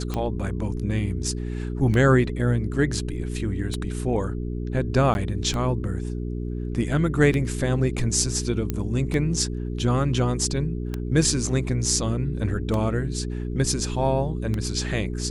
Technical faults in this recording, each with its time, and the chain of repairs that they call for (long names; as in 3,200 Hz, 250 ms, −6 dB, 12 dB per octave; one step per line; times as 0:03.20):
mains hum 60 Hz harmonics 7 −29 dBFS
scratch tick 33 1/3 rpm −14 dBFS
0:05.14–0:05.15: drop-out 11 ms
0:08.70: click −12 dBFS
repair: click removal
hum removal 60 Hz, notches 7
repair the gap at 0:05.14, 11 ms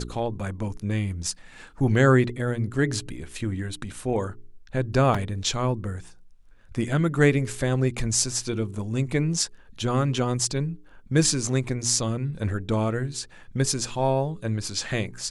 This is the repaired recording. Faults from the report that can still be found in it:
none of them is left